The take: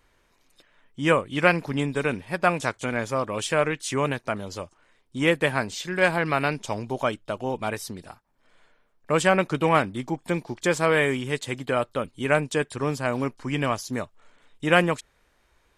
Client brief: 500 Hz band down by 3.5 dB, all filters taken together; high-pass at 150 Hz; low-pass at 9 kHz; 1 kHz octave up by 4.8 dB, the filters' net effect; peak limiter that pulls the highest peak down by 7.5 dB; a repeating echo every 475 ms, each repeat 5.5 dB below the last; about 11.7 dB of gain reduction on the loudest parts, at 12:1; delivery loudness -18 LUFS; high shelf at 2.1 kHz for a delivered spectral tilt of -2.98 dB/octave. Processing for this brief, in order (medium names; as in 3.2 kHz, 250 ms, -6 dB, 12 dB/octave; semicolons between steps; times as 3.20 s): high-pass 150 Hz; low-pass 9 kHz; peaking EQ 500 Hz -6.5 dB; peaking EQ 1 kHz +6 dB; treble shelf 2.1 kHz +8 dB; compression 12:1, threshold -22 dBFS; peak limiter -15.5 dBFS; feedback delay 475 ms, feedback 53%, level -5.5 dB; trim +11.5 dB